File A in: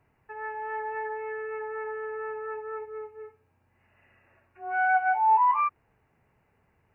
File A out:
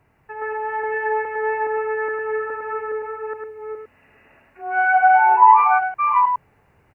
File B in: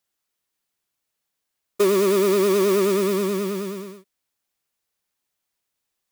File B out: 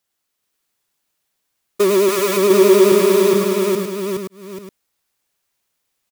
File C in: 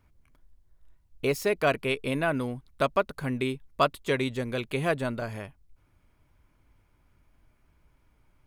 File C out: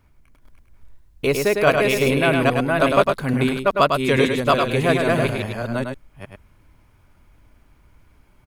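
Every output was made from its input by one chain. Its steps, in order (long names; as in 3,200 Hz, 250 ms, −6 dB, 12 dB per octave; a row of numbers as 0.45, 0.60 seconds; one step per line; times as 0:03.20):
delay that plays each chunk backwards 417 ms, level −1 dB
on a send: single-tap delay 104 ms −5 dB
on the sum: normalise the peak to −1.5 dBFS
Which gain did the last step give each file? +7.0, +3.0, +6.5 decibels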